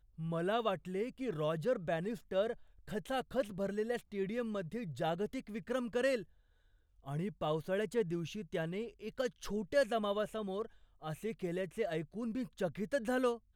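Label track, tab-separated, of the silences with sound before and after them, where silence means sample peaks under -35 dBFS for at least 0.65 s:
6.190000	7.080000	silence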